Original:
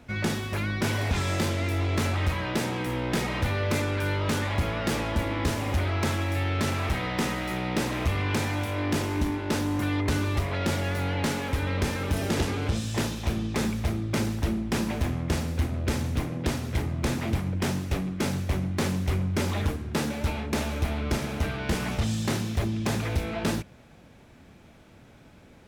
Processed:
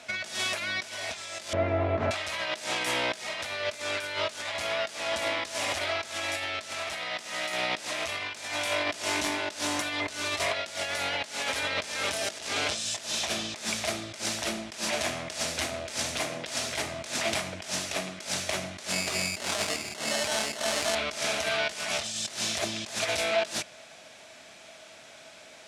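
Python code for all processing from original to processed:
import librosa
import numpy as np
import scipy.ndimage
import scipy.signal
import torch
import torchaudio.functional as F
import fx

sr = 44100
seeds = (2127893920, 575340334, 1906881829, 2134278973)

y = fx.chain(x, sr, fx.lowpass(hz=1400.0, slope=12),
    fx.tilt_eq(slope=-3.5), at=(1.53, 2.11))
y = fx.chain(y, sr, fx.low_shelf(hz=370.0, db=4.0),
    fx.sample_hold(seeds[0], rate_hz=2400.0, jitter_pct=0),
    fx.highpass(hz=110.0, slope=12), at=(18.92, 20.95))
y = fx.weighting(y, sr, curve='ITU-R 468')
y = fx.over_compress(y, sr, threshold_db=-32.0, ratio=-0.5)
y = fx.peak_eq(y, sr, hz=640.0, db=14.5, octaves=0.23)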